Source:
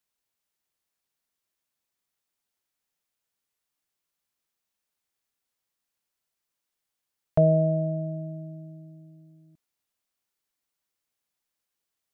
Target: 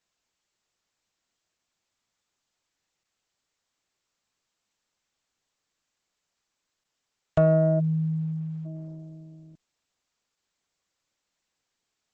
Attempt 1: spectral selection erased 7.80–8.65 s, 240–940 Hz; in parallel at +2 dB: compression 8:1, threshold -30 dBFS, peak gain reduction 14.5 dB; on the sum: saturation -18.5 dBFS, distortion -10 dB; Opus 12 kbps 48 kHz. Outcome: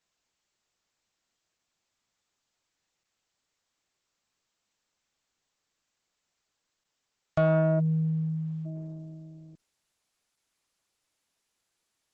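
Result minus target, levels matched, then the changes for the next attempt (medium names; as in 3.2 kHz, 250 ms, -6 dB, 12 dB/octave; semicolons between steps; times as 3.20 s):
saturation: distortion +8 dB
change: saturation -12 dBFS, distortion -18 dB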